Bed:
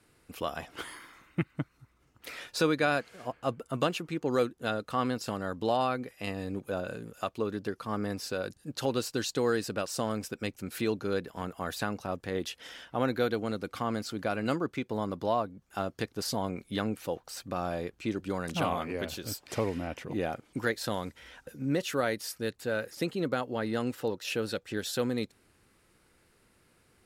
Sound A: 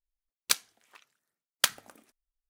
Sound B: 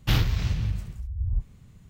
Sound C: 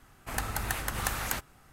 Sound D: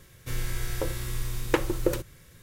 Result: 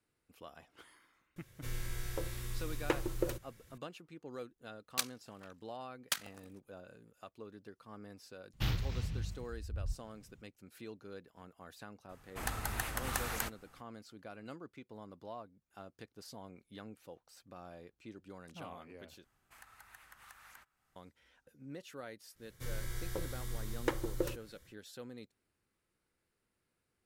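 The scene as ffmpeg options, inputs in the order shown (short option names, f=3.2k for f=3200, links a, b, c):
-filter_complex "[4:a]asplit=2[a][b];[3:a]asplit=2[c][d];[0:a]volume=-18dB[e];[1:a]tremolo=f=46:d=0.667[f];[d]acrossover=split=1000|2100[g][h][i];[g]acompressor=threshold=-58dB:ratio=4[j];[h]acompressor=threshold=-38dB:ratio=4[k];[i]acompressor=threshold=-45dB:ratio=4[l];[j][k][l]amix=inputs=3:normalize=0[m];[b]bandreject=f=2.6k:w=5.9[n];[e]asplit=2[o][p];[o]atrim=end=19.244[q];[m]atrim=end=1.72,asetpts=PTS-STARTPTS,volume=-17dB[r];[p]atrim=start=20.956[s];[a]atrim=end=2.42,asetpts=PTS-STARTPTS,volume=-9dB,afade=t=in:d=0.004:c=hsin,afade=t=out:st=2.416:d=0.004:c=hsin,adelay=1360[t];[f]atrim=end=2.49,asetpts=PTS-STARTPTS,volume=-3dB,afade=t=in:d=0.004:c=hsin,afade=t=out:st=2.486:d=0.004:c=hsin,adelay=4480[u];[2:a]atrim=end=1.89,asetpts=PTS-STARTPTS,volume=-11.5dB,afade=t=in:d=0.004:c=hsin,afade=t=out:st=1.886:d=0.004:c=hsin,adelay=8530[v];[c]atrim=end=1.72,asetpts=PTS-STARTPTS,volume=-5dB,afade=t=in:d=0.004:c=hsin,afade=t=out:st=1.716:d=0.004:c=hsin,adelay=12090[w];[n]atrim=end=2.42,asetpts=PTS-STARTPTS,volume=-9.5dB,afade=t=in:d=0.1,afade=t=out:st=2.32:d=0.1,adelay=22340[x];[q][r]acrossfade=d=0.004:c1=hsin:c2=hsin[y];[y][s]acrossfade=d=0.004:c1=hsin:c2=hsin[z];[z][t][u][v][w][x]amix=inputs=6:normalize=0"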